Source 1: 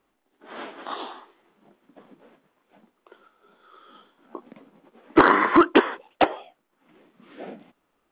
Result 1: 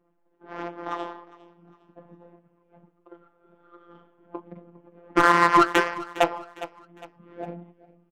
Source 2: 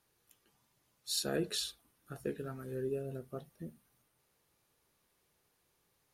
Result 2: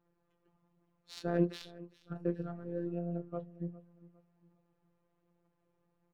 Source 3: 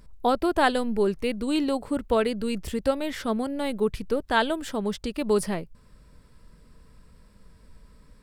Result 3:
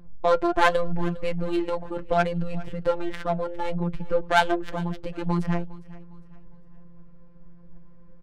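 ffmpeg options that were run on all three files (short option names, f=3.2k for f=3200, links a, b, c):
-filter_complex "[0:a]acrossover=split=230|490|1900[a][b][c][d];[b]acompressor=threshold=-38dB:ratio=6[e];[a][e][c][d]amix=inputs=4:normalize=0,afftfilt=real='hypot(re,im)*cos(PI*b)':imag='0':win_size=1024:overlap=0.75,flanger=delay=5.5:depth=2.4:regen=67:speed=1.3:shape=sinusoidal,adynamicsmooth=sensitivity=3.5:basefreq=1.1k,aecho=1:1:406|812|1218:0.1|0.036|0.013,alimiter=level_in=14dB:limit=-1dB:release=50:level=0:latency=1,volume=-2.5dB"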